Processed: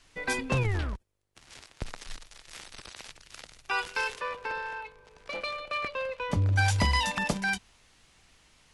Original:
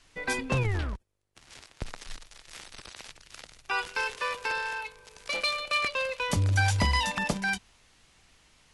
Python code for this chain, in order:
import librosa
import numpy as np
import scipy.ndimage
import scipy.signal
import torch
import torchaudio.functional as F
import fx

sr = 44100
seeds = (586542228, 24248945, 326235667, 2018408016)

y = fx.lowpass(x, sr, hz=1300.0, slope=6, at=(4.19, 6.57), fade=0.02)